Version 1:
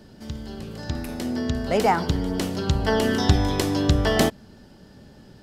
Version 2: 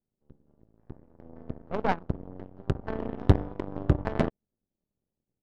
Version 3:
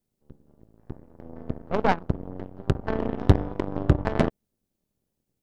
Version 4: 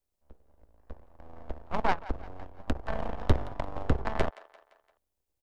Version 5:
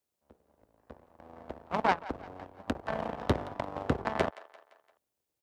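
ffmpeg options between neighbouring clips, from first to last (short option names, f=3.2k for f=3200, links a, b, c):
-af "aeval=exprs='0.841*(cos(1*acos(clip(val(0)/0.841,-1,1)))-cos(1*PI/2))+0.188*(cos(2*acos(clip(val(0)/0.841,-1,1)))-cos(2*PI/2))+0.0266*(cos(6*acos(clip(val(0)/0.841,-1,1)))-cos(6*PI/2))+0.119*(cos(7*acos(clip(val(0)/0.841,-1,1)))-cos(7*PI/2))':c=same,lowpass=f=1.8k:p=1,adynamicsmooth=sensitivity=0.5:basefreq=990"
-filter_complex "[0:a]highshelf=f=4.6k:g=5,asplit=2[a][b];[b]alimiter=limit=-14.5dB:level=0:latency=1:release=198,volume=0dB[c];[a][c]amix=inputs=2:normalize=0"
-filter_complex "[0:a]acrossover=split=100|580[a][b][c];[b]aeval=exprs='abs(val(0))':c=same[d];[c]aecho=1:1:172|344|516|688:0.133|0.0667|0.0333|0.0167[e];[a][d][e]amix=inputs=3:normalize=0,volume=-3.5dB"
-af "highpass=130,volume=1.5dB"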